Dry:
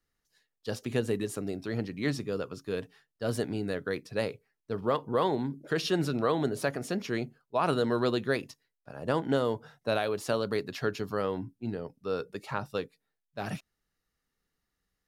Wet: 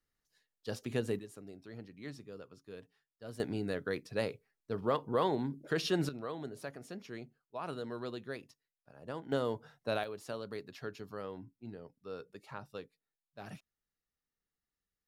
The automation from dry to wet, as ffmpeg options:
-af "asetnsamples=n=441:p=0,asendcmd='1.19 volume volume -15.5dB;3.4 volume volume -3.5dB;6.09 volume volume -13.5dB;9.32 volume volume -5.5dB;10.04 volume volume -12dB',volume=-5dB"

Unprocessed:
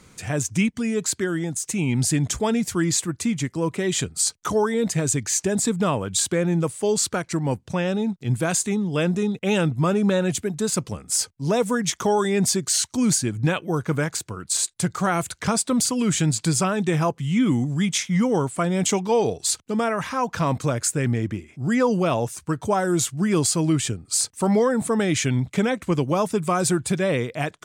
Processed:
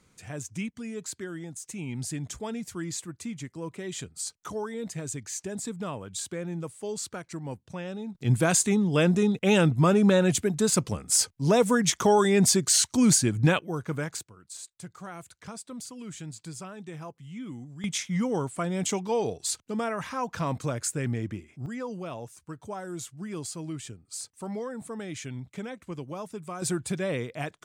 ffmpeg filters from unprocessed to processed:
-af "asetnsamples=n=441:p=0,asendcmd='8.15 volume volume 0dB;13.59 volume volume -8dB;14.23 volume volume -19dB;17.84 volume volume -7dB;21.66 volume volume -15.5dB;26.62 volume volume -7.5dB',volume=-12.5dB"

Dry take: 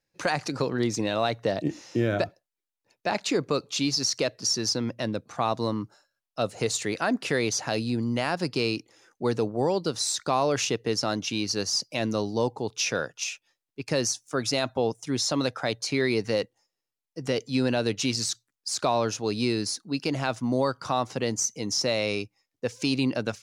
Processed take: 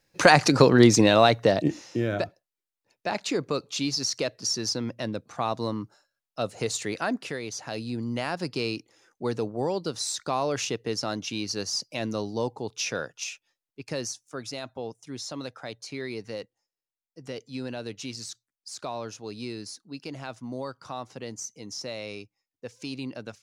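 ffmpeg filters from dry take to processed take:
-af "volume=17.5dB,afade=t=out:st=0.85:d=1.12:silence=0.237137,afade=t=out:st=7.07:d=0.33:silence=0.398107,afade=t=in:st=7.4:d=0.76:silence=0.446684,afade=t=out:st=13.27:d=1.26:silence=0.446684"

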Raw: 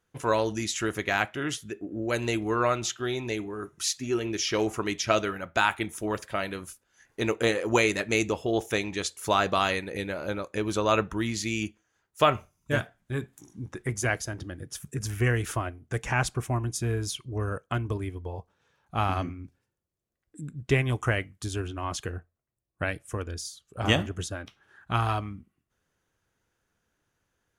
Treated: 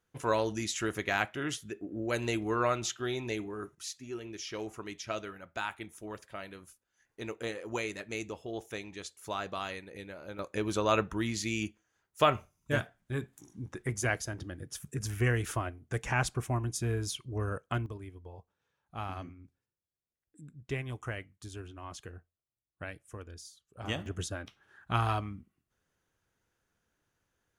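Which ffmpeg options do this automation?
-af "asetnsamples=n=441:p=0,asendcmd='3.75 volume volume -12.5dB;10.39 volume volume -3.5dB;17.86 volume volume -12dB;24.06 volume volume -3dB',volume=-4dB"

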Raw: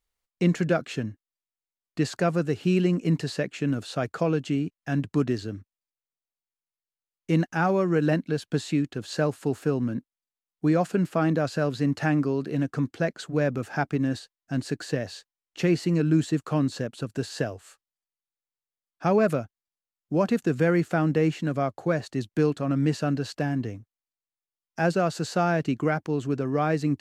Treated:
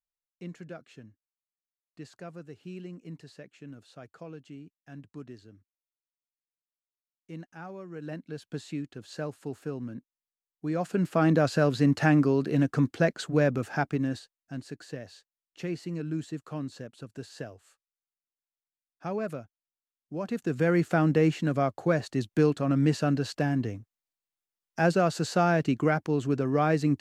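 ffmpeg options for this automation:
-af "volume=13dB,afade=t=in:st=7.92:d=0.58:silence=0.354813,afade=t=in:st=10.67:d=0.71:silence=0.251189,afade=t=out:st=13.2:d=1.43:silence=0.223872,afade=t=in:st=20.21:d=0.7:silence=0.281838"

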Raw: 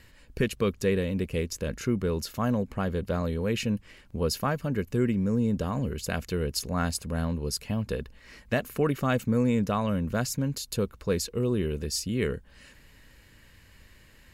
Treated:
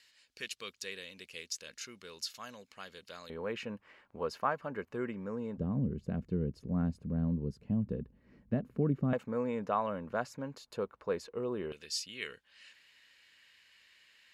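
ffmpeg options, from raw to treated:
-af "asetnsamples=n=441:p=0,asendcmd='3.3 bandpass f 1000;5.58 bandpass f 190;9.13 bandpass f 870;11.72 bandpass f 3200',bandpass=f=4.6k:t=q:w=1.2:csg=0"

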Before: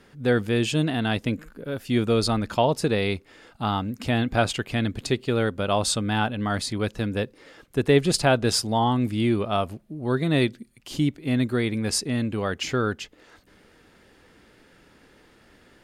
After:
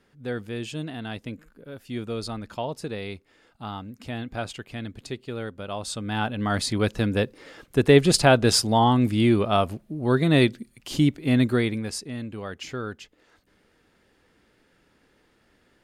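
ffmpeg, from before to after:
-af "volume=3dB,afade=t=in:st=5.87:d=0.88:silence=0.237137,afade=t=out:st=11.51:d=0.42:silence=0.281838"

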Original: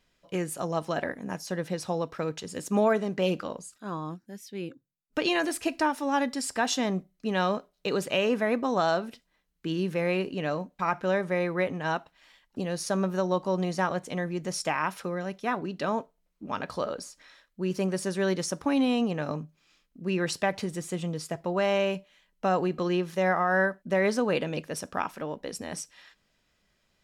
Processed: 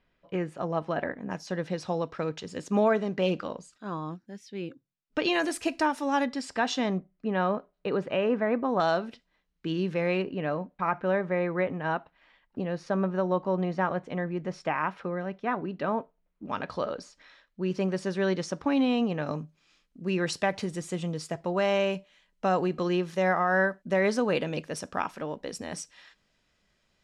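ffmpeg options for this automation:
-af "asetnsamples=n=441:p=0,asendcmd='1.31 lowpass f 5100;5.34 lowpass f 9700;6.25 lowpass f 4500;6.98 lowpass f 1900;8.8 lowpass f 4900;10.22 lowpass f 2300;16.46 lowpass f 4500;19.27 lowpass f 8700',lowpass=2.5k"

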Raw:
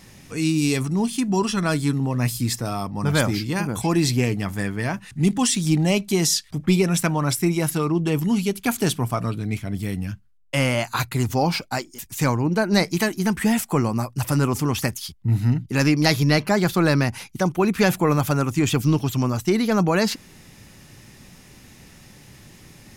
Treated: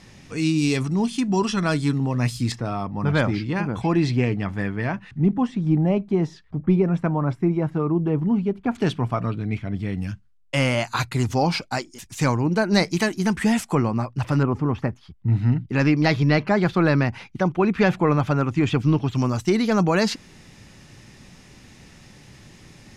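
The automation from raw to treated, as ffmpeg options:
-af "asetnsamples=n=441:p=0,asendcmd='2.52 lowpass f 2800;5.18 lowpass f 1100;8.75 lowpass f 2900;9.97 lowpass f 7500;13.75 lowpass f 3300;14.43 lowpass f 1300;15.14 lowpass f 3000;19.15 lowpass f 7300',lowpass=6.3k"

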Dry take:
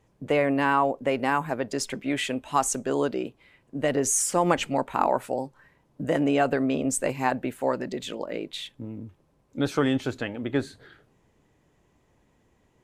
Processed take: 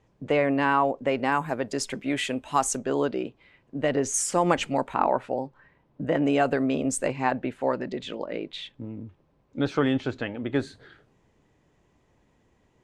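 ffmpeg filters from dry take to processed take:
-af "asetnsamples=n=441:p=0,asendcmd='1.32 lowpass f 11000;2.77 lowpass f 5000;4.14 lowpass f 9200;4.94 lowpass f 3400;6.24 lowpass f 8800;7.08 lowpass f 4300;10.52 lowpass f 7700',lowpass=6.1k"

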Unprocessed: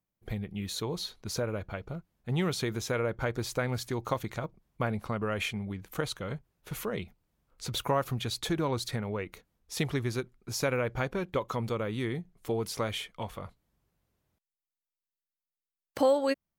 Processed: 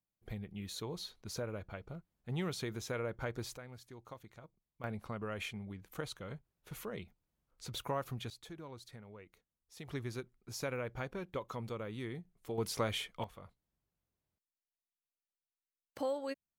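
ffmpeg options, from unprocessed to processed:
-af "asetnsamples=n=441:p=0,asendcmd='3.57 volume volume -19.5dB;4.84 volume volume -9dB;8.3 volume volume -19dB;9.88 volume volume -9.5dB;12.58 volume volume -2.5dB;13.24 volume volume -12dB',volume=-8dB"

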